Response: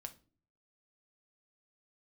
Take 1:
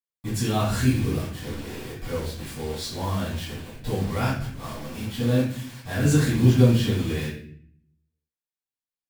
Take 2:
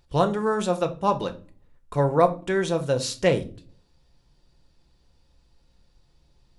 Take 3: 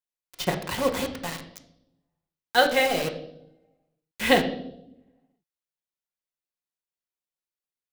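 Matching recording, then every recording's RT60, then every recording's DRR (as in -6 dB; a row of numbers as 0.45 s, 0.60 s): 2; 0.55 s, 0.40 s, 0.80 s; -13.0 dB, 6.0 dB, 3.5 dB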